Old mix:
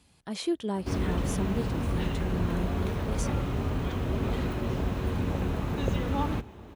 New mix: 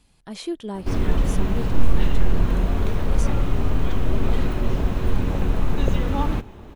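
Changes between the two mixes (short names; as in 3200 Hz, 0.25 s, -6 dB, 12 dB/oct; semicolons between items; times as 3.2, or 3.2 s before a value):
background +4.0 dB; master: remove HPF 53 Hz 24 dB/oct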